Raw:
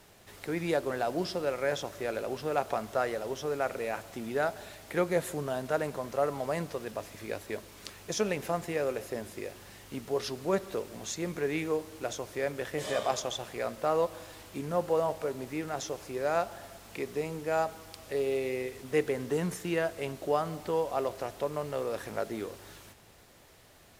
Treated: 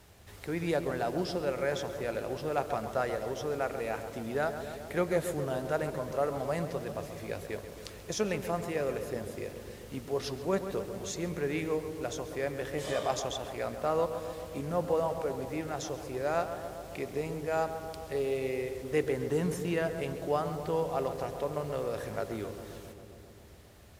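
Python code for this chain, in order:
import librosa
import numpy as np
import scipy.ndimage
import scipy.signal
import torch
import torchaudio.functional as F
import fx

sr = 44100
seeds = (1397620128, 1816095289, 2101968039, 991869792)

p1 = fx.peak_eq(x, sr, hz=68.0, db=13.0, octaves=1.3)
p2 = p1 + fx.echo_filtered(p1, sr, ms=135, feedback_pct=79, hz=1800.0, wet_db=-9.5, dry=0)
y = p2 * librosa.db_to_amplitude(-2.0)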